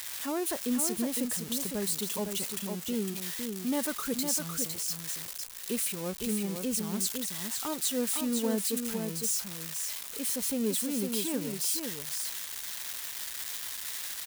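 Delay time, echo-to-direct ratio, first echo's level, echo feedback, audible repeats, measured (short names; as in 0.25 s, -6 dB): 0.507 s, -5.5 dB, -5.5 dB, no steady repeat, 1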